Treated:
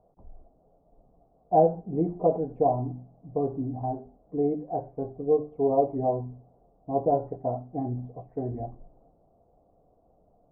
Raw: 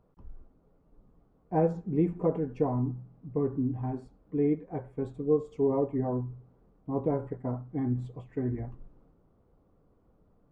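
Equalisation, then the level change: synth low-pass 700 Hz, resonance Q 7.1; notches 50/100/150/200/250/300/350/400 Hz; -1.5 dB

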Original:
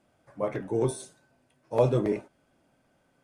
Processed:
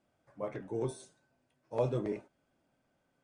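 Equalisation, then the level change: LPF 9100 Hz 24 dB/oct; -8.5 dB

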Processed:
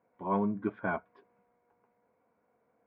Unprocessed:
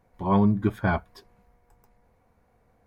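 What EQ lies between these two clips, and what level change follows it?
speaker cabinet 350–2000 Hz, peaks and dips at 370 Hz -5 dB, 560 Hz -4 dB, 800 Hz -9 dB, 1200 Hz -6 dB, 1800 Hz -10 dB; 0.0 dB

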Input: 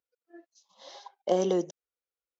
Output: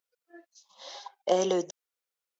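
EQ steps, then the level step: low shelf 430 Hz -11.5 dB; +5.5 dB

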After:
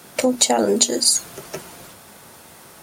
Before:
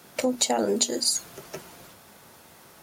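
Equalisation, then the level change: bell 9000 Hz +4.5 dB 0.39 oct; +6.5 dB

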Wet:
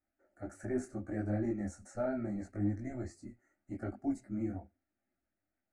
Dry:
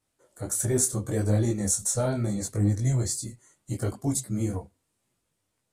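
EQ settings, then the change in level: LPF 2100 Hz 12 dB/oct; fixed phaser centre 690 Hz, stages 8; notch 1000 Hz, Q 5.8; -4.5 dB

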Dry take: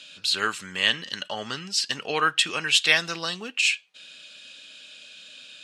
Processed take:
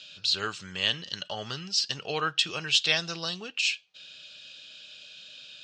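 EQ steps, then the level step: LPF 5400 Hz 24 dB/oct; dynamic EQ 1900 Hz, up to -4 dB, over -35 dBFS, Q 0.9; ten-band EQ 250 Hz -12 dB, 500 Hz -5 dB, 1000 Hz -8 dB, 2000 Hz -10 dB, 4000 Hz -4 dB; +6.0 dB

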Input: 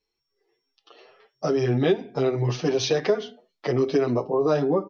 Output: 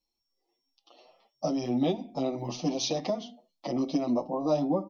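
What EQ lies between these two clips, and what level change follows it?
bell 2000 Hz -4.5 dB 2 oct; fixed phaser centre 420 Hz, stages 6; 0.0 dB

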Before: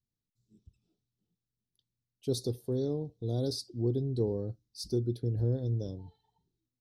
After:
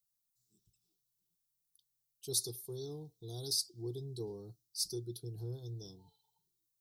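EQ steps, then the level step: pre-emphasis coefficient 0.9; fixed phaser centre 370 Hz, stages 8; +9.5 dB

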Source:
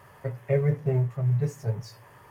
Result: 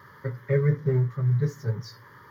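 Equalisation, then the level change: HPF 200 Hz 6 dB/oct; high shelf 4100 Hz -5.5 dB; fixed phaser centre 2600 Hz, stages 6; +7.0 dB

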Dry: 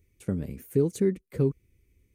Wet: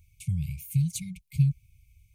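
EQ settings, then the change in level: brick-wall FIR band-stop 170–2100 Hz; +6.5 dB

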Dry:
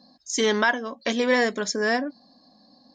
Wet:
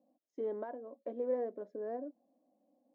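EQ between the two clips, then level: Butterworth band-pass 430 Hz, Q 1.6; bell 410 Hz -8 dB 0.6 oct; -6.0 dB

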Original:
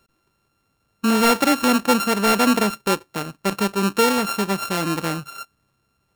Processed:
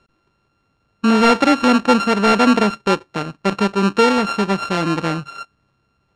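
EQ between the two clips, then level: air absorption 110 m; +4.5 dB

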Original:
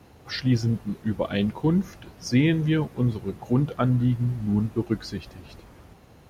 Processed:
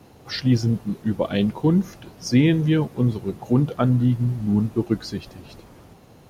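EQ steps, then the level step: bell 61 Hz -11 dB 0.69 oct; bell 1800 Hz -4 dB 1.5 oct; +4.0 dB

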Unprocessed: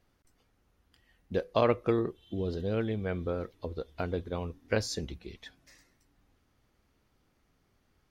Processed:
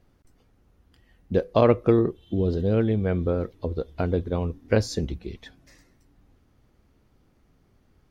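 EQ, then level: tilt shelf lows +4.5 dB, about 700 Hz; +6.0 dB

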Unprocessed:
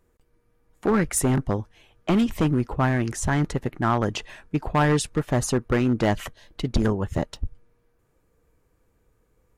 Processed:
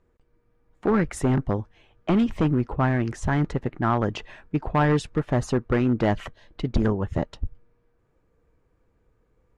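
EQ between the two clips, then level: air absorption 52 m; high shelf 4200 Hz -9 dB; 0.0 dB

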